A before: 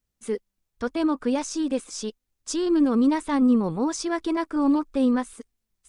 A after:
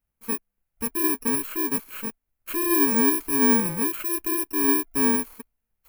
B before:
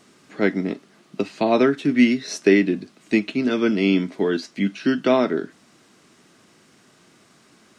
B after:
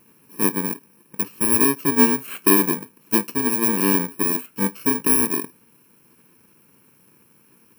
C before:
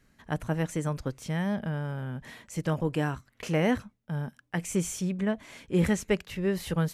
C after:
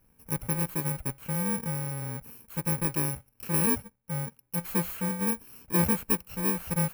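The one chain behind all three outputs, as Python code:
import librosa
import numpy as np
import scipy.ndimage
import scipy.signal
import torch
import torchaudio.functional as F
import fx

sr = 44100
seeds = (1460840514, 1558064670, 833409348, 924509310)

y = fx.bit_reversed(x, sr, seeds[0], block=64)
y = fx.band_shelf(y, sr, hz=5200.0, db=-10.0, octaves=1.7)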